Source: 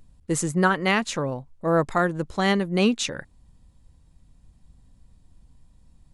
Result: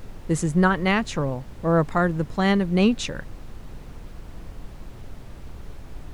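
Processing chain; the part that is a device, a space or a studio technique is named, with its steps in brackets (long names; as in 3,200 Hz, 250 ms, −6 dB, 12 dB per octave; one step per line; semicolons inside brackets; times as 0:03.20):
car interior (parametric band 160 Hz +5 dB; high-shelf EQ 4,900 Hz −7 dB; brown noise bed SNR 11 dB)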